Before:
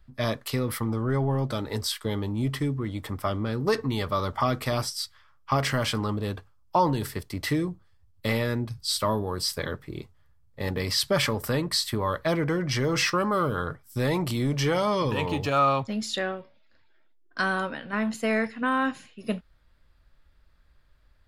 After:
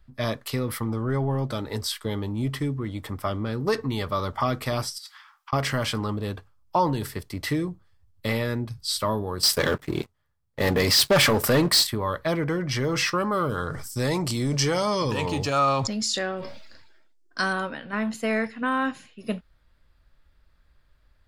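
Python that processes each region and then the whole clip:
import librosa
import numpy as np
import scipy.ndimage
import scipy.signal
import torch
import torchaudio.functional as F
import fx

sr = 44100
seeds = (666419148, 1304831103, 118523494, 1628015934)

y = fx.chain(x, sr, fx.ellip_highpass(hz=780.0, order=4, stop_db=40),
    fx.over_compress(threshold_db=-43.0, ratio=-1.0), at=(4.98, 5.53))
y = fx.chain(y, sr, fx.low_shelf(hz=100.0, db=-10.5),
    fx.leveller(passes=3), at=(9.43, 11.87))
y = fx.chain(y, sr, fx.band_shelf(hz=6300.0, db=9.0, octaves=1.2),
    fx.sustainer(db_per_s=36.0), at=(13.49, 17.53))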